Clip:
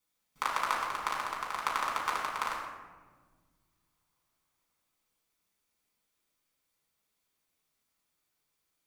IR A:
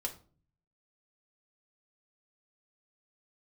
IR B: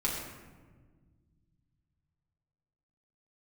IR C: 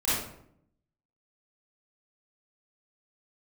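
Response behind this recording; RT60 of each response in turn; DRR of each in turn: B; 0.40, 1.5, 0.70 s; 1.0, -4.5, -11.5 dB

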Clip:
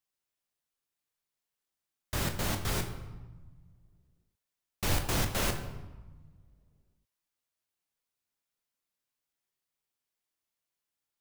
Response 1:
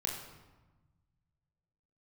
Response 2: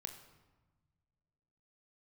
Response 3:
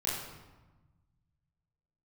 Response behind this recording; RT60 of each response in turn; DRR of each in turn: 2; 1.2, 1.3, 1.2 s; -1.5, 5.0, -8.0 dB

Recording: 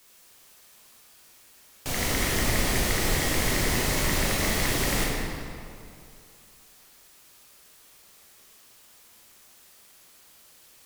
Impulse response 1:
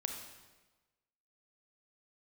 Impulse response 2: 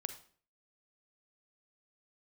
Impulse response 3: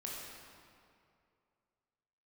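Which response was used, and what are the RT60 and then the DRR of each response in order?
3; 1.2, 0.50, 2.4 s; 3.5, 8.5, -4.0 dB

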